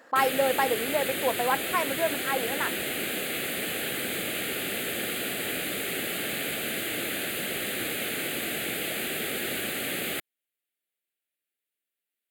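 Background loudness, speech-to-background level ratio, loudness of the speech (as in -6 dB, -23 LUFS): -29.5 LUFS, 1.0 dB, -28.5 LUFS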